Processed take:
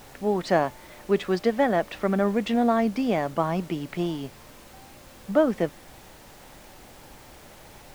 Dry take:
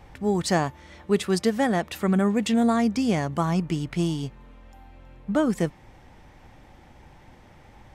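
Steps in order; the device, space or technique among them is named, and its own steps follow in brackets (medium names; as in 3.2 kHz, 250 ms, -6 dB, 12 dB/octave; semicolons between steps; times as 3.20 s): horn gramophone (band-pass 220–3300 Hz; peaking EQ 610 Hz +6 dB 0.44 oct; wow and flutter; pink noise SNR 22 dB)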